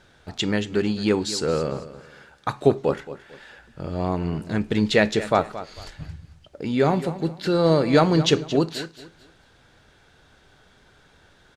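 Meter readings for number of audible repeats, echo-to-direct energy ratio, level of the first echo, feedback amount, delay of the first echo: 2, −14.0 dB, −14.5 dB, 28%, 224 ms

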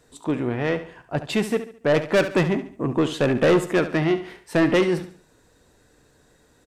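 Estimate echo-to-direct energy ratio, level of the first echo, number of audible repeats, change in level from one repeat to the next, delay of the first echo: −11.5 dB, −12.0 dB, 3, −8.5 dB, 71 ms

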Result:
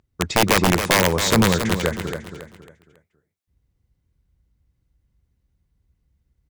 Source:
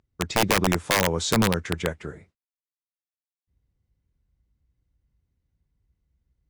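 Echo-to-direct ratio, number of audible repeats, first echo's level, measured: −7.5 dB, 3, −8.0 dB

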